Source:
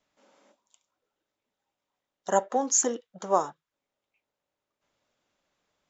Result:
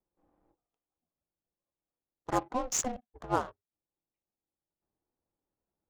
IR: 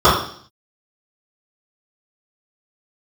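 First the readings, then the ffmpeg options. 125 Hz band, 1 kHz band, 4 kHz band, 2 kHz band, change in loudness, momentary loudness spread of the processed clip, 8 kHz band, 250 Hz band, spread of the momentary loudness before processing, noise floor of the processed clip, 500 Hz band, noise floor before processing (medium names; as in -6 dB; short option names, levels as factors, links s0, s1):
+4.0 dB, -5.5 dB, -2.0 dB, -2.0 dB, -6.5 dB, 13 LU, no reading, -3.0 dB, 14 LU, under -85 dBFS, -9.0 dB, under -85 dBFS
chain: -af "aeval=exprs='val(0)*sin(2*PI*250*n/s)':c=same,adynamicsmooth=sensitivity=7.5:basefreq=690,volume=0.708"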